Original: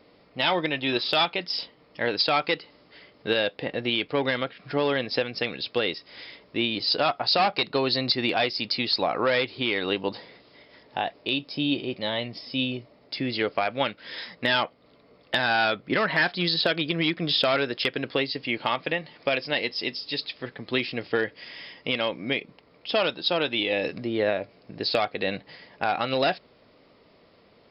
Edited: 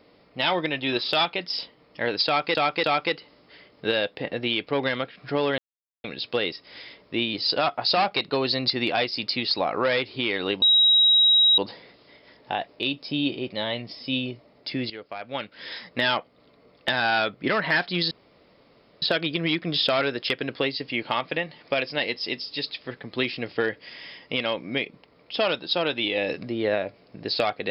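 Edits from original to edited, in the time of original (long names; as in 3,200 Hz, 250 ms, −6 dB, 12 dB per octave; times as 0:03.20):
0:02.26–0:02.55: repeat, 3 plays
0:05.00–0:05.46: silence
0:10.04: insert tone 3,830 Hz −14 dBFS 0.96 s
0:13.36–0:14.08: fade in quadratic, from −14 dB
0:16.57: splice in room tone 0.91 s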